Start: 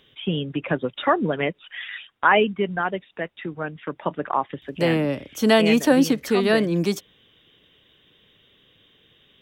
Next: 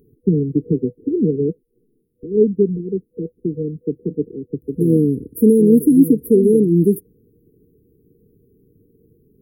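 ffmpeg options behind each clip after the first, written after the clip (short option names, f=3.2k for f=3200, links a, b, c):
-filter_complex "[0:a]asplit=2[a][b];[b]alimiter=limit=-14.5dB:level=0:latency=1:release=415,volume=-2dB[c];[a][c]amix=inputs=2:normalize=0,afftfilt=real='re*(1-between(b*sr/4096,490,9600))':imag='im*(1-between(b*sr/4096,490,9600))':win_size=4096:overlap=0.75,volume=4.5dB"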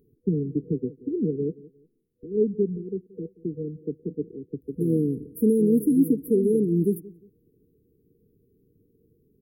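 -filter_complex "[0:a]asplit=2[a][b];[b]adelay=178,lowpass=f=1.4k:p=1,volume=-20dB,asplit=2[c][d];[d]adelay=178,lowpass=f=1.4k:p=1,volume=0.3[e];[a][c][e]amix=inputs=3:normalize=0,volume=-8.5dB"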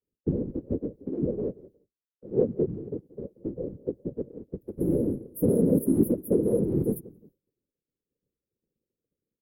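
-af "lowshelf=f=450:g=-5.5,afftfilt=real='hypot(re,im)*cos(2*PI*random(0))':imag='hypot(re,im)*sin(2*PI*random(1))':win_size=512:overlap=0.75,agate=range=-33dB:threshold=-59dB:ratio=3:detection=peak,volume=7dB"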